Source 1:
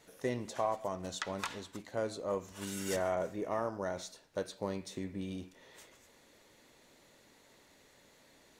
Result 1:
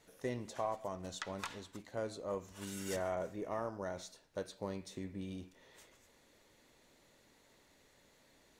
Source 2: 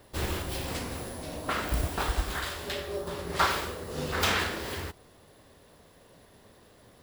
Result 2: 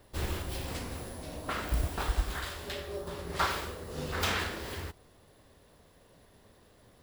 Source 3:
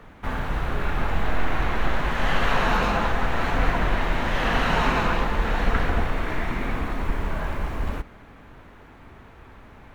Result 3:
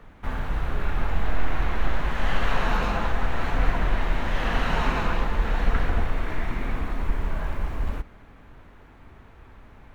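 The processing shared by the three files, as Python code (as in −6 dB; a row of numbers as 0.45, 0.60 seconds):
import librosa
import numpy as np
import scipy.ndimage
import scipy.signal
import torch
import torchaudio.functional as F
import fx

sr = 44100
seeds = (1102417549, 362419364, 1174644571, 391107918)

y = fx.low_shelf(x, sr, hz=73.0, db=7.0)
y = y * librosa.db_to_amplitude(-4.5)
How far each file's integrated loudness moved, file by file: −4.0, −4.0, −3.0 LU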